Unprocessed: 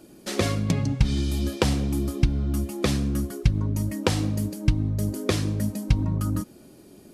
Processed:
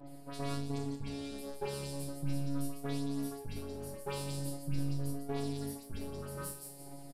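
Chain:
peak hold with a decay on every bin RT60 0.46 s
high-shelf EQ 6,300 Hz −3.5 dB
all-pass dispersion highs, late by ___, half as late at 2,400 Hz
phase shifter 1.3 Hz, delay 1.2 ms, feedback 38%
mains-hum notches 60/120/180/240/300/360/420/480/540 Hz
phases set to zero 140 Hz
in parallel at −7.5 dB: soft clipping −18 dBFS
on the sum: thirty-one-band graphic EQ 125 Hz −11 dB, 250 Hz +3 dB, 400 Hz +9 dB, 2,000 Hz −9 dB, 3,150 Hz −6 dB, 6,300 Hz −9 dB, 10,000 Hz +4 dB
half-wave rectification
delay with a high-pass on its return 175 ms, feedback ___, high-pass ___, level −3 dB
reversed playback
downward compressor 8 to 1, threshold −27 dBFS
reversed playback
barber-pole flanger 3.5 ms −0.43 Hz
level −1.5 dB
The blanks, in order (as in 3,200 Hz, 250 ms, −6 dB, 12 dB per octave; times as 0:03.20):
75 ms, 32%, 4,500 Hz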